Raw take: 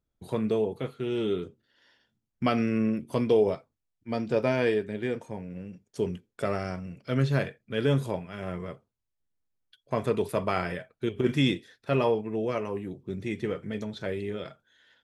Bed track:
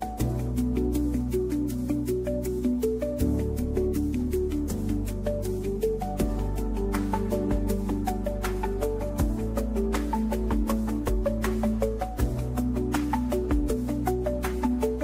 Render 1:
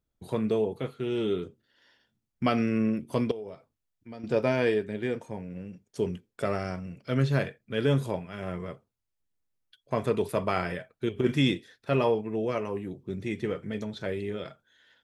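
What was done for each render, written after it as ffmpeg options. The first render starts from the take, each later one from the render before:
-filter_complex "[0:a]asettb=1/sr,asplit=3[s0][s1][s2];[s0]atrim=end=3.314[s3];[s1]atrim=start=3.31:end=4.24,asetpts=PTS-STARTPTS,afade=t=in:d=0.004:c=qsin,afade=t=out:st=0.926:d=0.004:c=qsin,acompressor=threshold=0.00631:ratio=2.5:attack=3.2:release=140:knee=1:detection=peak[s4];[s2]atrim=start=4.236[s5];[s3][s4]acrossfade=d=0.004:c1=hsin:c2=qsin[s6];[s6][s5]acrossfade=d=0.004:c1=qsin:c2=hsin"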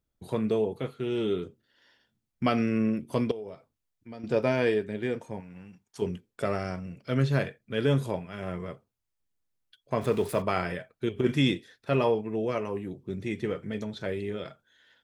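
-filter_complex "[0:a]asettb=1/sr,asplit=3[s0][s1][s2];[s0]atrim=end=5.404[s3];[s1]atrim=start=5.4:end=6.02,asetpts=PTS-STARTPTS,afade=t=in:d=0.004:c=qsin,afade=t=out:st=0.616:d=0.004:c=qsin,lowshelf=f=690:t=q:w=3:g=-6.5[s4];[s2]atrim=start=6.016[s5];[s3][s4]acrossfade=d=0.004:c1=hsin:c2=qsin[s6];[s6][s5]acrossfade=d=0.004:c1=qsin:c2=hsin,asettb=1/sr,asplit=3[s7][s8][s9];[s7]atrim=end=10.014[s10];[s8]atrim=start=10.01:end=10.42,asetpts=PTS-STARTPTS,afade=t=in:d=0.004:c=qsin,afade=t=out:st=0.406:d=0.004:c=qsin,aeval=exprs='val(0)+0.5*0.00944*sgn(val(0))':c=same[s11];[s9]atrim=start=10.416[s12];[s10][s11]acrossfade=d=0.004:c1=hsin:c2=qsin[s13];[s13][s12]acrossfade=d=0.004:c1=qsin:c2=hsin"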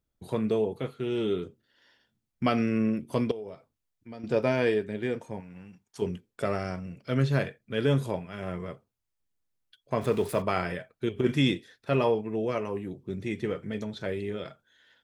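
-af anull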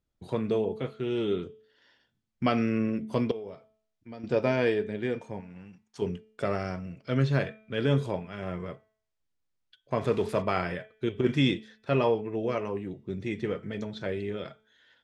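-af "lowpass=6500,bandreject=f=217.4:t=h:w=4,bandreject=f=434.8:t=h:w=4,bandreject=f=652.2:t=h:w=4,bandreject=f=869.6:t=h:w=4,bandreject=f=1087:t=h:w=4,bandreject=f=1304.4:t=h:w=4,bandreject=f=1521.8:t=h:w=4,bandreject=f=1739.2:t=h:w=4,bandreject=f=1956.6:t=h:w=4,bandreject=f=2174:t=h:w=4,bandreject=f=2391.4:t=h:w=4,bandreject=f=2608.8:t=h:w=4,bandreject=f=2826.2:t=h:w=4,bandreject=f=3043.6:t=h:w=4,bandreject=f=3261:t=h:w=4,bandreject=f=3478.4:t=h:w=4,bandreject=f=3695.8:t=h:w=4"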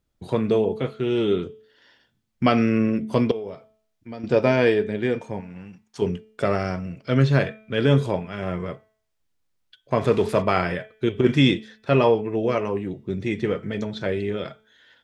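-af "volume=2.24"

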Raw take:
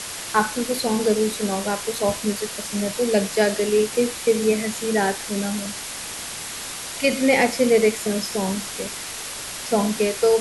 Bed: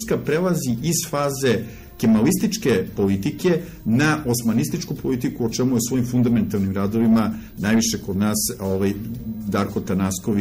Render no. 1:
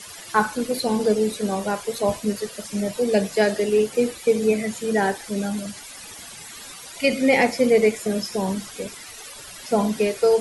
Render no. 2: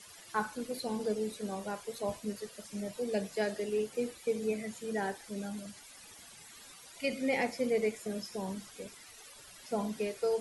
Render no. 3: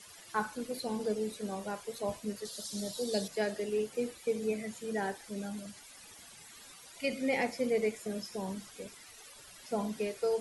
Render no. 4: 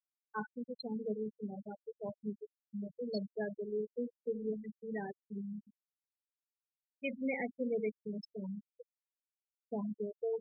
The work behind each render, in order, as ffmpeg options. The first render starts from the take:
-af "afftdn=nr=14:nf=-33"
-af "volume=0.211"
-filter_complex "[0:a]asettb=1/sr,asplit=3[s0][s1][s2];[s0]atrim=end=2.454[s3];[s1]atrim=start=2.45:end=3.28,asetpts=PTS-STARTPTS,afade=t=in:d=0.004:c=qsin,afade=t=out:st=0.826:d=0.004:c=qsin,highshelf=f=3100:t=q:w=3:g=7.5[s4];[s2]atrim=start=3.276[s5];[s3][s4]acrossfade=d=0.004:c1=hsin:c2=qsin[s6];[s6][s5]acrossfade=d=0.004:c1=qsin:c2=hsin"
-af "afftfilt=real='re*gte(hypot(re,im),0.0708)':imag='im*gte(hypot(re,im),0.0708)':win_size=1024:overlap=0.75,equalizer=f=830:w=0.58:g=-8"

